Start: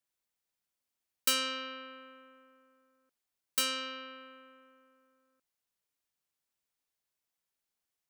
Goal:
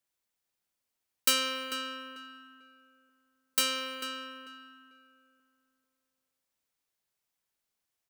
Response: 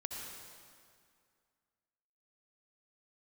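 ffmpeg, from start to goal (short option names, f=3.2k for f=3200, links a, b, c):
-filter_complex "[0:a]aeval=exprs='0.2*(cos(1*acos(clip(val(0)/0.2,-1,1)))-cos(1*PI/2))+0.00316*(cos(7*acos(clip(val(0)/0.2,-1,1)))-cos(7*PI/2))':c=same,asplit=2[a][b];[b]adelay=444,lowpass=f=2.3k:p=1,volume=-7dB,asplit=2[c][d];[d]adelay=444,lowpass=f=2.3k:p=1,volume=0.26,asplit=2[e][f];[f]adelay=444,lowpass=f=2.3k:p=1,volume=0.26[g];[a][c][e][g]amix=inputs=4:normalize=0,asplit=2[h][i];[1:a]atrim=start_sample=2205[j];[i][j]afir=irnorm=-1:irlink=0,volume=-17.5dB[k];[h][k]amix=inputs=2:normalize=0,volume=2.5dB"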